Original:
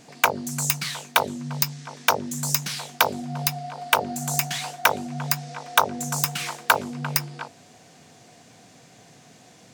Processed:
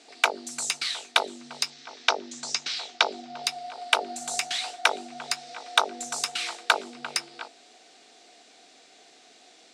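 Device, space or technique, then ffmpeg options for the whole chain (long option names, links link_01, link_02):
phone speaker on a table: -filter_complex "[0:a]asettb=1/sr,asplit=3[link_01][link_02][link_03];[link_01]atrim=end=1.704[link_04];[link_02]atrim=start=1.7:end=3.44,asetpts=PTS-STARTPTS,afade=type=in:duration=0.004:curve=qsin,afade=type=out:start_time=1.736:duration=0.004:curve=qsin,lowpass=frequency=6600:width=0.5412,lowpass=frequency=6600:width=1.3066[link_05];[link_03]atrim=start=3.436[link_06];[link_04][link_05]acrossfade=duration=0.004:curve1=hsin:curve2=qsin[link_07];[link_07][link_06]acrossfade=duration=0.004:curve1=qsin:curve2=hsin,highpass=frequency=340:width=0.5412,highpass=frequency=340:width=1.3066,equalizer=frequency=530:width_type=q:width=4:gain=-8,equalizer=frequency=1000:width_type=q:width=4:gain=-9,equalizer=frequency=1700:width_type=q:width=4:gain=-4,equalizer=frequency=3900:width_type=q:width=4:gain=5,equalizer=frequency=6600:width_type=q:width=4:gain=-5,lowpass=frequency=8700:width=0.5412,lowpass=frequency=8700:width=1.3066"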